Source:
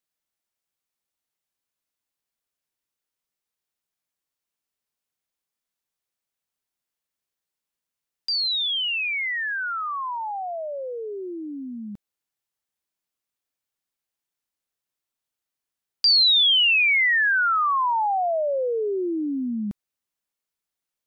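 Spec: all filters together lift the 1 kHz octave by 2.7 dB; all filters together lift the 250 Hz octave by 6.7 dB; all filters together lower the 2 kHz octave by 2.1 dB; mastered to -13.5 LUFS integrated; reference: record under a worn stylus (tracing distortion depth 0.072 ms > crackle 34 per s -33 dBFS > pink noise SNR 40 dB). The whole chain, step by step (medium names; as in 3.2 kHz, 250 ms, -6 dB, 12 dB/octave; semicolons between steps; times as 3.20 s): peaking EQ 250 Hz +8 dB; peaking EQ 1 kHz +4 dB; peaking EQ 2 kHz -4 dB; tracing distortion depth 0.072 ms; crackle 34 per s -33 dBFS; pink noise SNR 40 dB; trim +8 dB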